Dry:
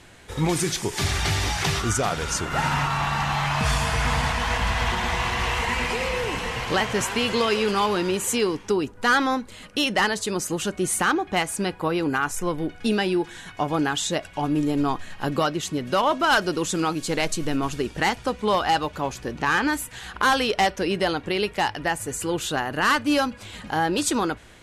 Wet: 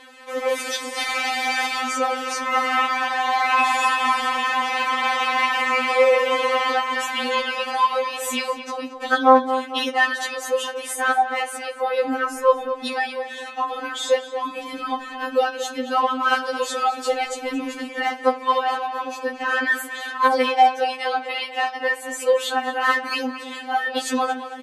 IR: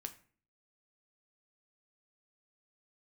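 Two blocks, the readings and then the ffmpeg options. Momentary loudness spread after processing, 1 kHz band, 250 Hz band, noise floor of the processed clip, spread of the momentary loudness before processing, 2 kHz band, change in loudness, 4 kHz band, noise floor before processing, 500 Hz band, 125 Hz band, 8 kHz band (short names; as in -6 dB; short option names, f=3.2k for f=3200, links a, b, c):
10 LU, +5.0 dB, -5.5 dB, -36 dBFS, 6 LU, +2.5 dB, +2.0 dB, 0.0 dB, -45 dBFS, +3.5 dB, under -35 dB, -4.5 dB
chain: -filter_complex "[0:a]highpass=59,lowshelf=f=310:t=q:w=1.5:g=-8,acrossover=split=120[a][b];[b]alimiter=limit=-17dB:level=0:latency=1:release=344[c];[a][c]amix=inputs=2:normalize=0,asplit=2[d][e];[e]adelay=225,lowpass=f=3.3k:p=1,volume=-11dB,asplit=2[f][g];[g]adelay=225,lowpass=f=3.3k:p=1,volume=0.5,asplit=2[h][i];[i]adelay=225,lowpass=f=3.3k:p=1,volume=0.5,asplit=2[j][k];[k]adelay=225,lowpass=f=3.3k:p=1,volume=0.5,asplit=2[l][m];[m]adelay=225,lowpass=f=3.3k:p=1,volume=0.5[n];[d][f][h][j][l][n]amix=inputs=6:normalize=0,asplit=2[o][p];[1:a]atrim=start_sample=2205,lowpass=3.9k[q];[p][q]afir=irnorm=-1:irlink=0,volume=7dB[r];[o][r]amix=inputs=2:normalize=0,afftfilt=real='re*3.46*eq(mod(b,12),0)':imag='im*3.46*eq(mod(b,12),0)':win_size=2048:overlap=0.75,volume=2.5dB"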